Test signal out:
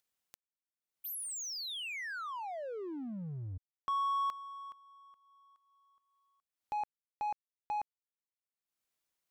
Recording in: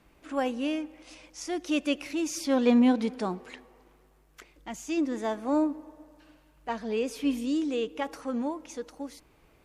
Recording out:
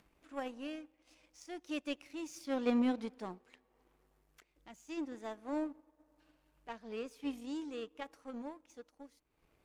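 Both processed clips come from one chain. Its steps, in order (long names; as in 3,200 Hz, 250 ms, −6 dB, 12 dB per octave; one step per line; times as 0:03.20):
upward compression, threshold −39 dBFS
power curve on the samples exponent 1.4
level −7.5 dB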